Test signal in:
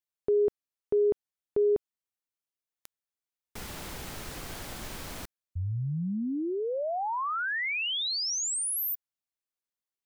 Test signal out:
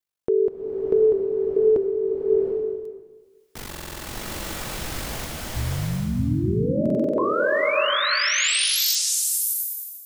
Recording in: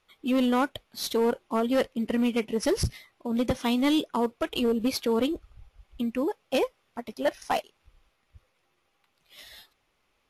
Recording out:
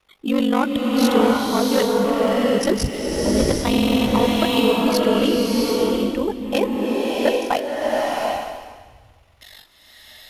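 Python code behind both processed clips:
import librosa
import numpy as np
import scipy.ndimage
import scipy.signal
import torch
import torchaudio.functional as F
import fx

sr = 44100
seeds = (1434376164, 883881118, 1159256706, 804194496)

y = x * np.sin(2.0 * np.pi * 24.0 * np.arange(len(x)) / sr)
y = fx.buffer_glitch(y, sr, at_s=(2.05, 3.69, 6.81, 9.04), block=2048, repeats=7)
y = fx.rev_bloom(y, sr, seeds[0], attack_ms=740, drr_db=-3.0)
y = y * librosa.db_to_amplitude(7.5)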